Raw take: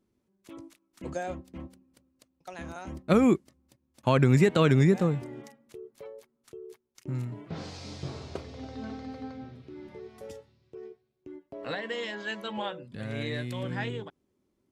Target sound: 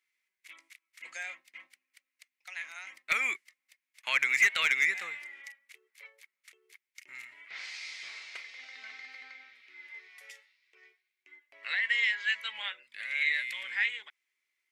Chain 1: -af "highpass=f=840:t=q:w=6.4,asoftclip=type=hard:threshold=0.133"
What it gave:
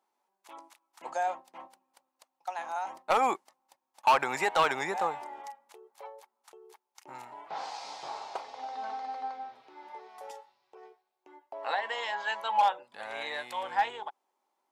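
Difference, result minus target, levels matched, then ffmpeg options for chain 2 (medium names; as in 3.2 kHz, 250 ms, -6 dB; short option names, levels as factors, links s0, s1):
1 kHz band +20.0 dB
-af "highpass=f=2100:t=q:w=6.4,asoftclip=type=hard:threshold=0.133"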